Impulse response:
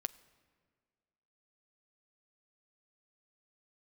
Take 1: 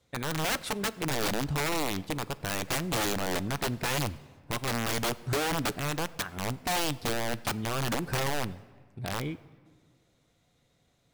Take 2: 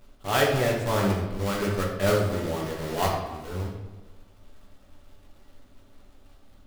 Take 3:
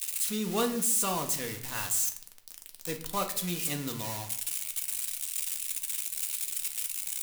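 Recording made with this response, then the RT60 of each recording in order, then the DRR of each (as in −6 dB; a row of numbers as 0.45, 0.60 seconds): 1; 1.9, 1.2, 0.70 seconds; 15.0, −2.5, 3.5 decibels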